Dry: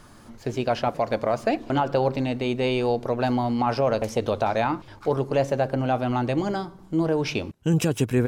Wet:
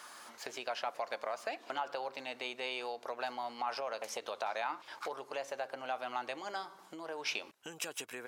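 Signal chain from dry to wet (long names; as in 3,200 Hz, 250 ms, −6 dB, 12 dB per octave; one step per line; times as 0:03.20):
downward compressor 5 to 1, threshold −33 dBFS, peak gain reduction 15 dB
high-pass filter 870 Hz 12 dB per octave
level +3.5 dB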